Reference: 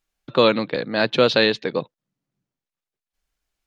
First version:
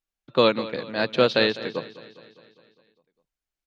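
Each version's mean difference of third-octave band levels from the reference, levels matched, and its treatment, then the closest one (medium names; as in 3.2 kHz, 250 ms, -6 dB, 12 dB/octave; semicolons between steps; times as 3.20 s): 3.0 dB: on a send: feedback delay 203 ms, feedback 60%, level -11.5 dB; on the sum: upward expansion 1.5:1, over -30 dBFS; trim -2 dB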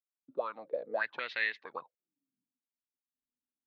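9.5 dB: fade-in on the opening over 1.14 s; auto-wah 250–2000 Hz, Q 10, up, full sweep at -16 dBFS; trim +1 dB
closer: first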